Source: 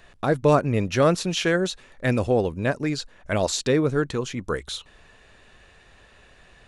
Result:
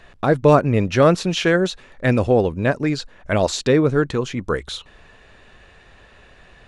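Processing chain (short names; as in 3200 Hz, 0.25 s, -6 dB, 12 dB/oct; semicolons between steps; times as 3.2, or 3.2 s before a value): LPF 4000 Hz 6 dB/oct; gain +5 dB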